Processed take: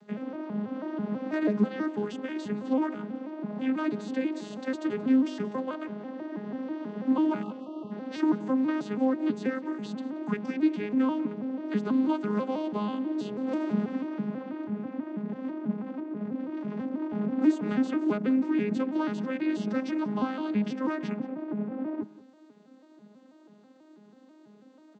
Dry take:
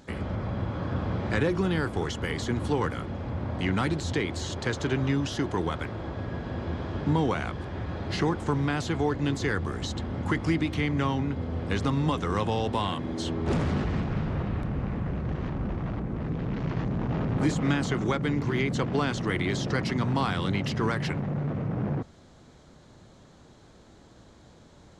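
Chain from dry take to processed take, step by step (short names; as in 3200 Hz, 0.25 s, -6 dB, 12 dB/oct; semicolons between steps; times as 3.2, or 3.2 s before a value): arpeggiated vocoder major triad, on G#3, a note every 0.163 s; spectral delete 7.42–7.91, 1300–2600 Hz; echo 0.179 s -19 dB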